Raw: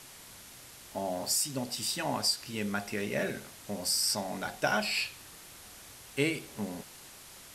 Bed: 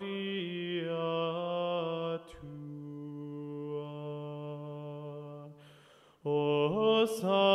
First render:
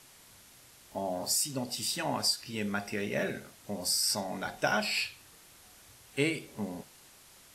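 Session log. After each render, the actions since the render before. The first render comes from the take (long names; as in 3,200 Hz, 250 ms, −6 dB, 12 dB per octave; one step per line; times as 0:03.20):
noise reduction from a noise print 6 dB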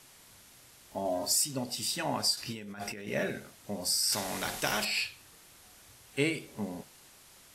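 0:01.05–0:01.45: comb filter 3.1 ms
0:02.37–0:03.08: compressor whose output falls as the input rises −41 dBFS
0:04.12–0:04.85: every bin compressed towards the loudest bin 2 to 1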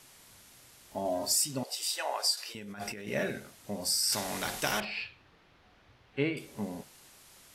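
0:01.63–0:02.55: Butterworth high-pass 440 Hz
0:04.80–0:06.37: high-frequency loss of the air 300 metres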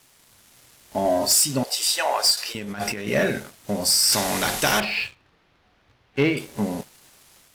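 leveller curve on the samples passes 2
automatic gain control gain up to 4 dB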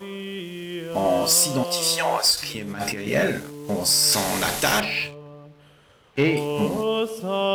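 mix in bed +3 dB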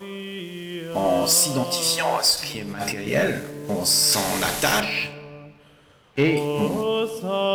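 rectangular room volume 2,600 cubic metres, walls mixed, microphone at 0.41 metres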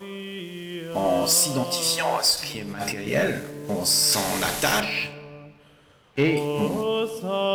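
level −1.5 dB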